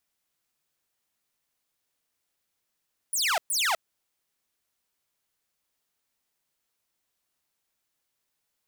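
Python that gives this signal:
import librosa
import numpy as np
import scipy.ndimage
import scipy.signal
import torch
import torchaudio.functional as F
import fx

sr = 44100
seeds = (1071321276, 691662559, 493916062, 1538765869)

y = fx.laser_zaps(sr, level_db=-20.0, start_hz=11000.0, end_hz=610.0, length_s=0.25, wave='saw', shots=2, gap_s=0.12)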